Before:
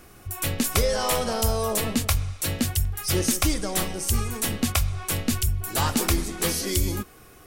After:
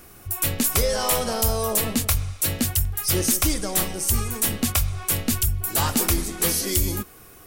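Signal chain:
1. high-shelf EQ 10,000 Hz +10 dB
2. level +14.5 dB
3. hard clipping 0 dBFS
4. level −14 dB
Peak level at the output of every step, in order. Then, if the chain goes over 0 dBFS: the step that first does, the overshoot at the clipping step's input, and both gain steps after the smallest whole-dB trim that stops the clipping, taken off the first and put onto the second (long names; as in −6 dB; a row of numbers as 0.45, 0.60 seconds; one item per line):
−5.5, +9.0, 0.0, −14.0 dBFS
step 2, 9.0 dB
step 2 +5.5 dB, step 4 −5 dB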